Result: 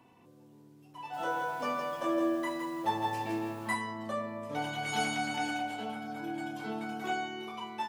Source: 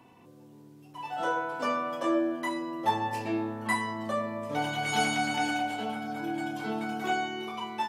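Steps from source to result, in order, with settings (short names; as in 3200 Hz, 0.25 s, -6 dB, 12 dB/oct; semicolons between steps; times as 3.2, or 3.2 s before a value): 0.97–3.75 lo-fi delay 0.163 s, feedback 35%, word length 8-bit, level -4.5 dB; gain -4.5 dB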